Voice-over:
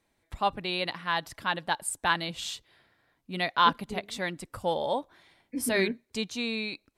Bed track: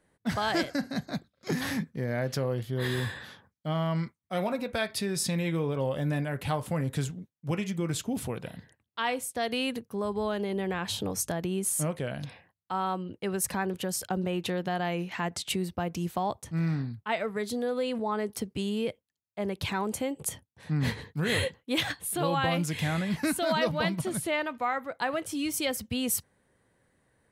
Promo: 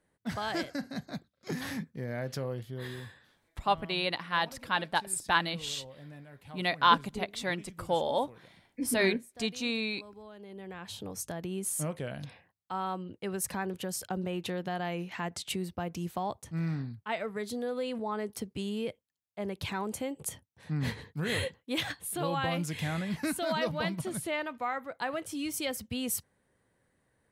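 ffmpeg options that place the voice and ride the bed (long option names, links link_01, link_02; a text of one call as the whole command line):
ffmpeg -i stem1.wav -i stem2.wav -filter_complex "[0:a]adelay=3250,volume=-0.5dB[link_01];[1:a]volume=9.5dB,afade=type=out:start_time=2.48:duration=0.75:silence=0.211349,afade=type=in:start_time=10.34:duration=1.43:silence=0.177828[link_02];[link_01][link_02]amix=inputs=2:normalize=0" out.wav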